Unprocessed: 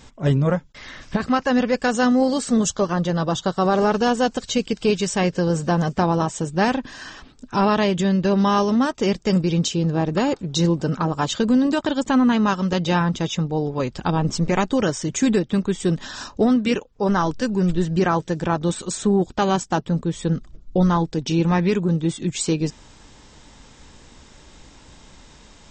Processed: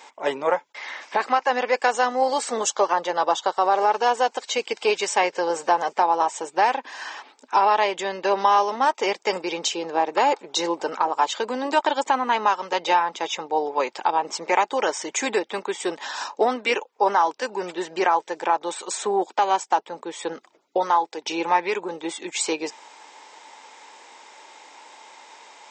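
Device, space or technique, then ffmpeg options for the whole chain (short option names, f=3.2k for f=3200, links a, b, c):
laptop speaker: -filter_complex "[0:a]highpass=f=390:w=0.5412,highpass=f=390:w=1.3066,equalizer=f=880:t=o:w=0.51:g=12,equalizer=f=2.2k:t=o:w=0.51:g=7.5,alimiter=limit=-8.5dB:level=0:latency=1:release=493,asettb=1/sr,asplit=3[a][b][c];[a]atrim=end=20.784[d];[b]atrim=start=20.78:end=21.24,asetpts=PTS-STARTPTS,afade=t=in:d=0.004:c=qsin,afade=t=out:st=0.456:d=0.004:c=qsin,lowshelf=f=200:g=-10[e];[c]atrim=start=21.236[f];[d][e]acrossfade=d=0.004:c1=hsin:c2=qsin[g];[g][f]acrossfade=d=0.004:c1=qsin:c2=hsin"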